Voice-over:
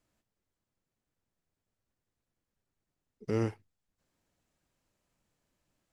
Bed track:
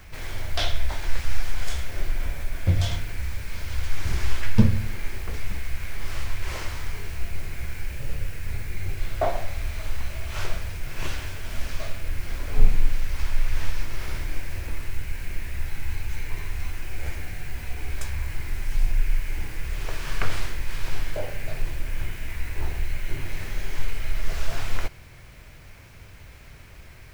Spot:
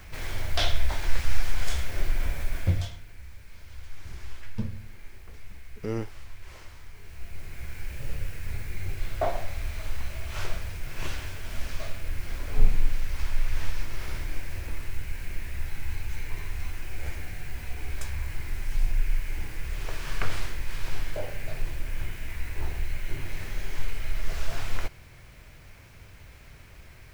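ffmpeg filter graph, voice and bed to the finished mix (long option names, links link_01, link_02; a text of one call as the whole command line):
ffmpeg -i stem1.wav -i stem2.wav -filter_complex "[0:a]adelay=2550,volume=-1dB[link_01];[1:a]volume=12dB,afade=type=out:start_time=2.57:duration=0.35:silence=0.177828,afade=type=in:start_time=6.94:duration=1.13:silence=0.251189[link_02];[link_01][link_02]amix=inputs=2:normalize=0" out.wav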